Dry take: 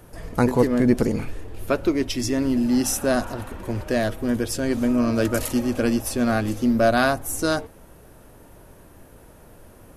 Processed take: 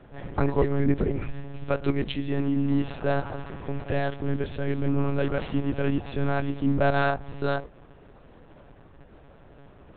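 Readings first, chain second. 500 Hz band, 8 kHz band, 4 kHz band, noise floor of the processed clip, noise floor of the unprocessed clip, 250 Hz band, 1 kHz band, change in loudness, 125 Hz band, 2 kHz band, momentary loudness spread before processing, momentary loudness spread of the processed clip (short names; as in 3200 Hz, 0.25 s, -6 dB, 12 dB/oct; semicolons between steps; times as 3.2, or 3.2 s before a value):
-4.5 dB, under -40 dB, -8.5 dB, -51 dBFS, -49 dBFS, -6.5 dB, -3.5 dB, -5.0 dB, +1.0 dB, -5.0 dB, 10 LU, 10 LU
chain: in parallel at -10.5 dB: hard clip -20.5 dBFS, distortion -9 dB; on the sum: monotone LPC vocoder at 8 kHz 140 Hz; gain -5 dB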